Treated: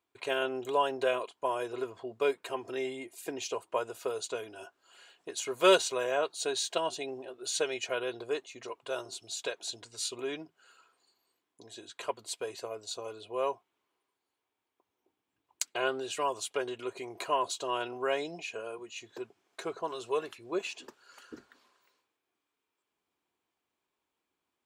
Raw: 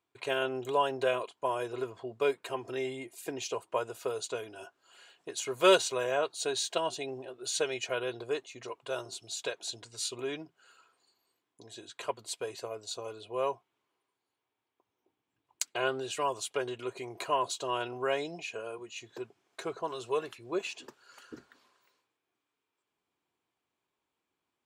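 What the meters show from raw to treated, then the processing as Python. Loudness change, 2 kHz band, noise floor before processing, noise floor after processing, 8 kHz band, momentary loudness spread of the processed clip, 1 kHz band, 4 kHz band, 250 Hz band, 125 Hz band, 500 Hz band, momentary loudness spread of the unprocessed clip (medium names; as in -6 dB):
0.0 dB, 0.0 dB, under -85 dBFS, under -85 dBFS, 0.0 dB, 14 LU, 0.0 dB, 0.0 dB, 0.0 dB, -5.5 dB, 0.0 dB, 14 LU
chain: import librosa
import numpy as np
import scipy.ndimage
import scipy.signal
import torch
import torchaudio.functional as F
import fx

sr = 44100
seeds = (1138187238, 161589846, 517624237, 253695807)

y = fx.peak_eq(x, sr, hz=130.0, db=-8.0, octaves=0.39)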